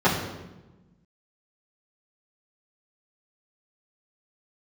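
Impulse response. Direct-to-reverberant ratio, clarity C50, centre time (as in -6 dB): -12.0 dB, 5.5 dB, 42 ms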